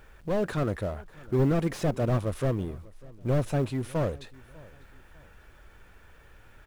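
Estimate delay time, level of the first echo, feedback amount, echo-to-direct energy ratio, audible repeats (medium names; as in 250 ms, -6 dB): 597 ms, -23.0 dB, 35%, -22.5 dB, 2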